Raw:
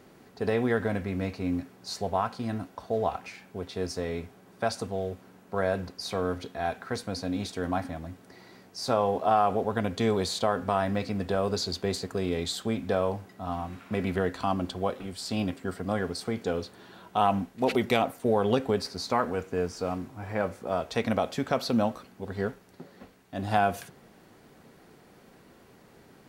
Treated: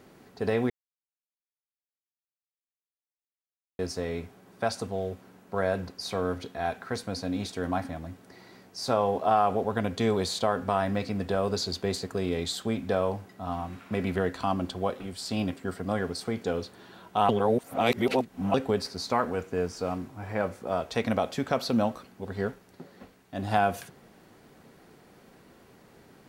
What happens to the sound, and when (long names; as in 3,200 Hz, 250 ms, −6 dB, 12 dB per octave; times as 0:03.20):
0:00.70–0:03.79: silence
0:17.29–0:18.54: reverse